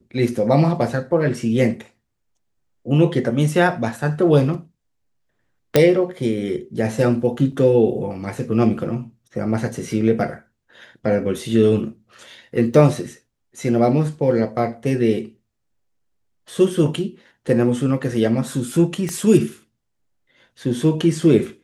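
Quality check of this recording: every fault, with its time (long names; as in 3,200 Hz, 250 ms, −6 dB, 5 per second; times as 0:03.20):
0:05.76: click 0 dBFS
0:07.52: drop-out 3.7 ms
0:12.74: drop-out 2.4 ms
0:19.09: click −12 dBFS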